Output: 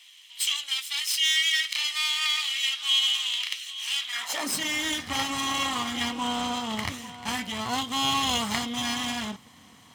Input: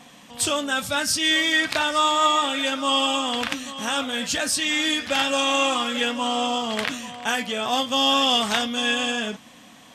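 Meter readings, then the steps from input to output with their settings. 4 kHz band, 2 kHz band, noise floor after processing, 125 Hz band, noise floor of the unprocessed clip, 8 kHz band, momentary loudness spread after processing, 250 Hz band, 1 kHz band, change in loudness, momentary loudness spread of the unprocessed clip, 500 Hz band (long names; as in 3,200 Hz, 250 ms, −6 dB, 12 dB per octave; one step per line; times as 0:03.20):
−2.0 dB, −5.5 dB, −53 dBFS, +2.0 dB, −48 dBFS, −3.0 dB, 10 LU, −6.5 dB, −8.0 dB, −4.0 dB, 7 LU, −14.5 dB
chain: lower of the sound and its delayed copy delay 0.98 ms
high-pass filter sweep 2,800 Hz → 87 Hz, 0:04.05–0:04.70
level −4 dB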